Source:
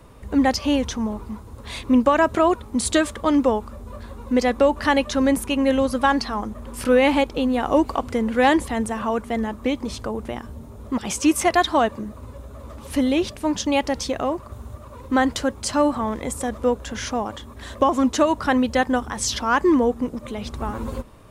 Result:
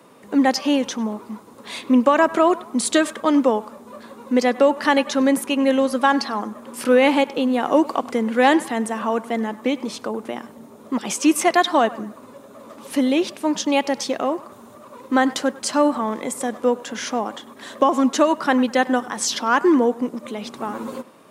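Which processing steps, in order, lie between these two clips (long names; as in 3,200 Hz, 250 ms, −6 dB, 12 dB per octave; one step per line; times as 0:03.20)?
high-pass filter 190 Hz 24 dB per octave
feedback echo with a band-pass in the loop 99 ms, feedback 45%, band-pass 1,300 Hz, level −16.5 dB
level +1.5 dB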